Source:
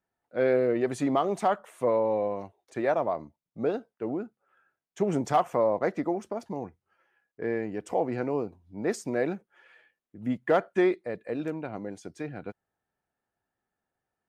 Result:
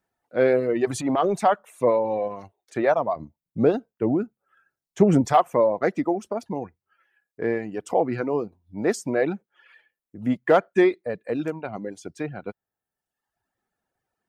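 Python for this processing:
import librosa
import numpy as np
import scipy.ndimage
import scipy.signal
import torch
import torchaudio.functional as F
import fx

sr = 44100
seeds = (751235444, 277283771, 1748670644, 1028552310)

y = fx.dereverb_blind(x, sr, rt60_s=1.0)
y = fx.transient(y, sr, attack_db=-11, sustain_db=5, at=(0.85, 1.37))
y = fx.low_shelf(y, sr, hz=250.0, db=10.5, at=(3.16, 5.28))
y = y * librosa.db_to_amplitude(6.0)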